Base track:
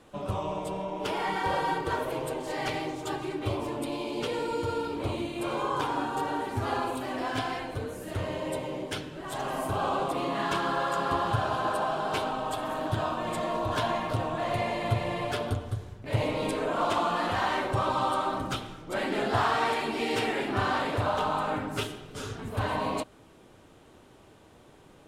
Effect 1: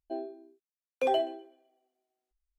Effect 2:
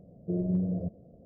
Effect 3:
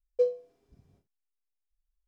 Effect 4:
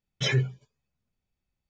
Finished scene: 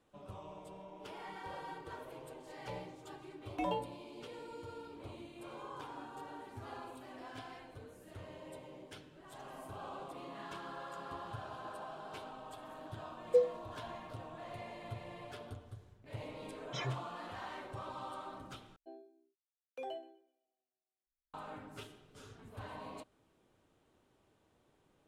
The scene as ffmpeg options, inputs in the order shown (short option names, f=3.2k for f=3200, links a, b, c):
-filter_complex "[1:a]asplit=2[a][b];[0:a]volume=-17.5dB[c];[a]aeval=exprs='val(0)*sin(2*PI*210*n/s)':c=same[d];[c]asplit=2[e][f];[e]atrim=end=18.764[g];[b]atrim=end=2.58,asetpts=PTS-STARTPTS,volume=-16.5dB[h];[f]atrim=start=21.336[i];[d]atrim=end=2.58,asetpts=PTS-STARTPTS,volume=-6dB,afade=t=in:d=0.004:c=hsin,afade=t=out:st=2.576:d=0.004:c=hsin,adelay=2570[j];[3:a]atrim=end=2.07,asetpts=PTS-STARTPTS,volume=-2dB,afade=t=in:d=0.004:c=hsin,afade=t=out:st=2.066:d=0.004:c=hsin,adelay=13150[k];[4:a]atrim=end=1.69,asetpts=PTS-STARTPTS,volume=-15dB,afade=t=in:d=0.004:c=hsin,afade=t=out:st=1.686:d=0.004:c=hsin,adelay=728532S[l];[g][h]acrossfade=d=0.004:c1=hsin:c2=hsin[m];[m][i]acrossfade=d=0.004:c1=hsin:c2=hsin[n];[n][j][k][l]amix=inputs=4:normalize=0"